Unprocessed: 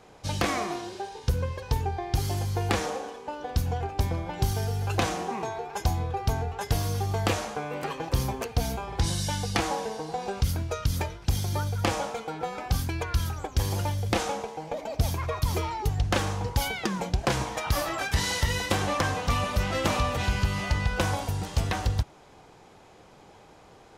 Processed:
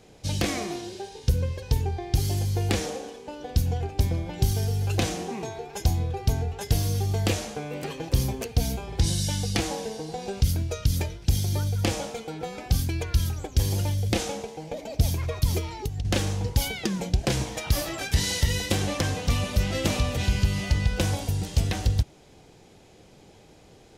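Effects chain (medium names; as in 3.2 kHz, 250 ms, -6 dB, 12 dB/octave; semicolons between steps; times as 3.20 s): peaking EQ 1.1 kHz -12.5 dB 1.5 oct; 15.58–16.05 s: compression 10:1, threshold -30 dBFS, peak gain reduction 10.5 dB; trim +3.5 dB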